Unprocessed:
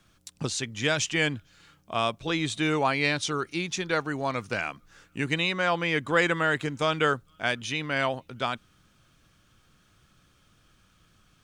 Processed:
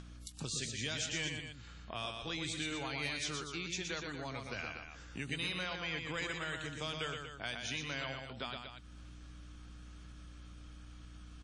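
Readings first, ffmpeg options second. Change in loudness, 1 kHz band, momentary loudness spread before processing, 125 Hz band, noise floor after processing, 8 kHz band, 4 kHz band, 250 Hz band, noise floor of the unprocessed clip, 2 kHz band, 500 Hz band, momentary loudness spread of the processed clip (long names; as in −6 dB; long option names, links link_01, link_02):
−12.0 dB, −16.0 dB, 8 LU, −10.5 dB, −52 dBFS, −6.5 dB, −7.5 dB, −13.5 dB, −64 dBFS, −12.5 dB, −16.0 dB, 17 LU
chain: -filter_complex "[0:a]acrossover=split=110|2600[link_01][link_02][link_03];[link_02]acompressor=threshold=-36dB:ratio=5[link_04];[link_03]volume=29dB,asoftclip=hard,volume=-29dB[link_05];[link_01][link_04][link_05]amix=inputs=3:normalize=0,aeval=exprs='val(0)+0.00251*(sin(2*PI*60*n/s)+sin(2*PI*2*60*n/s)/2+sin(2*PI*3*60*n/s)/3+sin(2*PI*4*60*n/s)/4+sin(2*PI*5*60*n/s)/5)':channel_layout=same,aecho=1:1:119.5|239.1:0.562|0.316,acompressor=mode=upward:threshold=-36dB:ratio=2.5,volume=-6.5dB" -ar 48000 -c:a wmav2 -b:a 32k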